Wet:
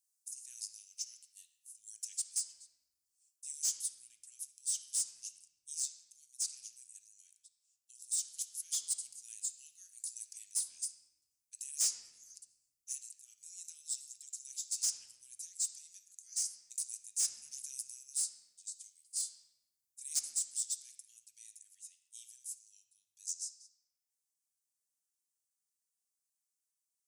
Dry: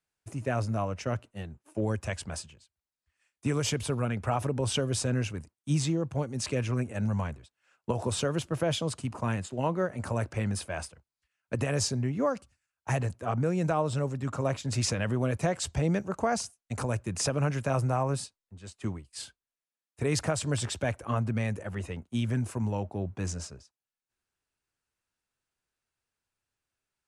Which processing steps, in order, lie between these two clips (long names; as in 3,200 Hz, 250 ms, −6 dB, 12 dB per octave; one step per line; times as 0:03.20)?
inverse Chebyshev high-pass filter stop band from 1,100 Hz, stop band 80 dB
speech leveller within 3 dB 0.5 s
soft clipping −33 dBFS, distortion −13 dB
on a send: convolution reverb RT60 1.1 s, pre-delay 4 ms, DRR 6 dB
on the sum: level +7.5 dB